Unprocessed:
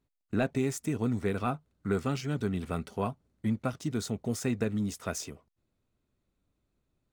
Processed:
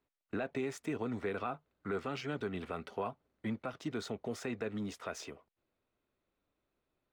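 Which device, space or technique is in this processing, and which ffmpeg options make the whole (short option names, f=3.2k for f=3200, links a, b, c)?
DJ mixer with the lows and highs turned down: -filter_complex "[0:a]acrossover=split=330 4000:gain=0.224 1 0.158[a][b][c];[a][b][c]amix=inputs=3:normalize=0,alimiter=level_in=4.5dB:limit=-24dB:level=0:latency=1:release=92,volume=-4.5dB,volume=1.5dB"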